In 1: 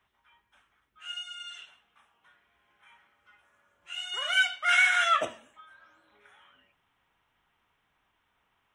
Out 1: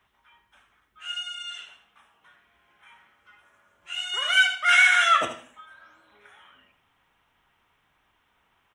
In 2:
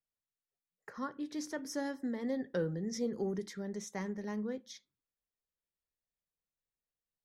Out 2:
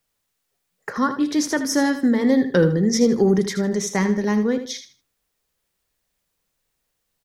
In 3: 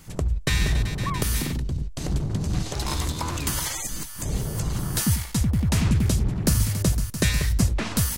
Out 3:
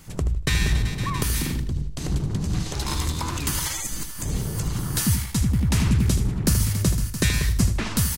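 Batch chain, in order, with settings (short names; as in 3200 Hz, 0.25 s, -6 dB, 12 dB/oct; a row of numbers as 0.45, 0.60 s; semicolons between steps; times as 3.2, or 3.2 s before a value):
on a send: feedback echo 78 ms, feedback 25%, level -10.5 dB; on the sum: dynamic EQ 620 Hz, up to -5 dB, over -49 dBFS, Q 2.2; normalise peaks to -6 dBFS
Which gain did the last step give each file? +5.0, +19.0, +0.5 dB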